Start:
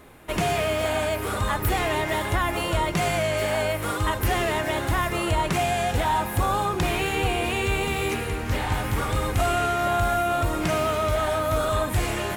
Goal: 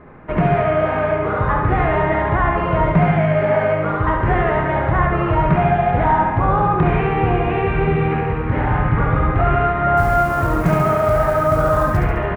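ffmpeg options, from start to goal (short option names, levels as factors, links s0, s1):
-filter_complex "[0:a]lowpass=f=1900:w=0.5412,lowpass=f=1900:w=1.3066,equalizer=f=150:t=o:w=0.49:g=9,bandreject=f=50:t=h:w=6,bandreject=f=100:t=h:w=6,asettb=1/sr,asplit=3[s0][s1][s2];[s0]atrim=end=9.974[s3];[s1]atrim=start=9.97:end=11.97,asetpts=PTS-STARTPTS,afade=t=in:d=0.004:c=qsin,afade=t=out:st=1.996:d=0.004:c=qsin,acrusher=bits=7:mode=log:mix=0:aa=0.000001[s4];[s2]atrim=start=11.966[s5];[s3][s4]acrossfade=d=0.004:c1=hsin:c2=qsin[s6];[s6][s5]acrossfade=d=0.004:c1=qsin:c2=hsin,asplit=2[s7][s8];[s8]adelay=28,volume=0.282[s9];[s7][s9]amix=inputs=2:normalize=0,aecho=1:1:70|140|210|280|350|420|490:0.631|0.341|0.184|0.0994|0.0537|0.029|0.0156,volume=1.88"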